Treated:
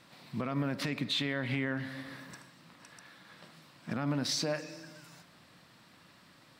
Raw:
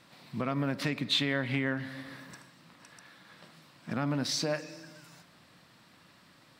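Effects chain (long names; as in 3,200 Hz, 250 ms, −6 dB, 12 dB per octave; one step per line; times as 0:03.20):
brickwall limiter −22.5 dBFS, peak gain reduction 6 dB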